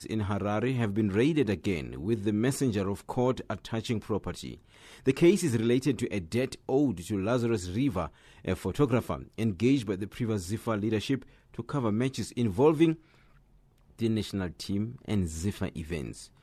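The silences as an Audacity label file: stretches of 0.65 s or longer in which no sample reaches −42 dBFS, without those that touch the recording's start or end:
12.950000	13.990000	silence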